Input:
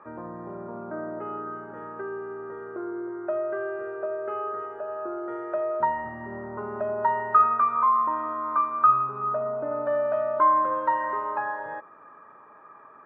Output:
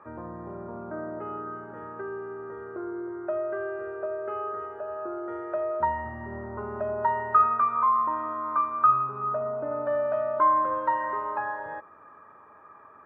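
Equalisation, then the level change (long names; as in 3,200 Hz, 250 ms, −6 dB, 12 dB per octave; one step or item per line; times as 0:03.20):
parametric band 81 Hz +14.5 dB 0.54 octaves
−1.5 dB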